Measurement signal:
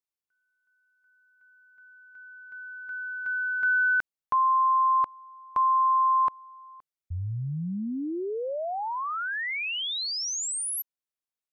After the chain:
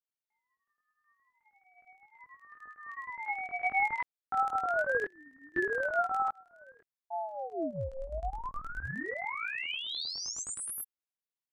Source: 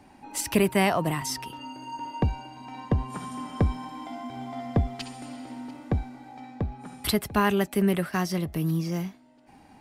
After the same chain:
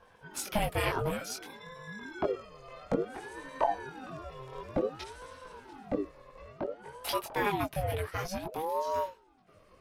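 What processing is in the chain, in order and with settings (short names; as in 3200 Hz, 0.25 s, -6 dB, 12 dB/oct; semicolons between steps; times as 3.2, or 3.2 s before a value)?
LFO notch square 9.6 Hz 580–7800 Hz; chorus voices 4, 0.34 Hz, delay 21 ms, depth 3.4 ms; ring modulator with a swept carrier 520 Hz, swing 50%, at 0.56 Hz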